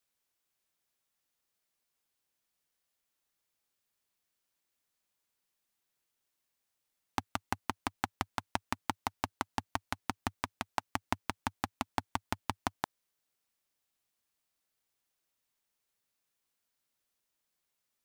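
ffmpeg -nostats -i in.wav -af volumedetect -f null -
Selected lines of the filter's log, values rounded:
mean_volume: -44.0 dB
max_volume: -9.9 dB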